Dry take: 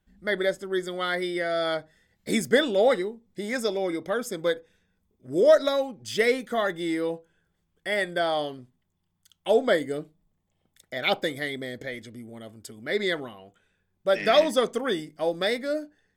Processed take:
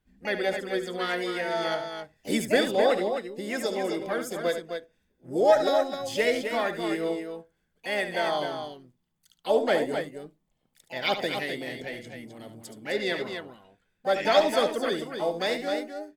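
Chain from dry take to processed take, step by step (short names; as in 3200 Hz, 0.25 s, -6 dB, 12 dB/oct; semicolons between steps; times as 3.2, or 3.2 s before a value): loudspeakers at several distances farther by 25 m -10 dB, 89 m -7 dB; harmoniser +5 st -8 dB; gain -3 dB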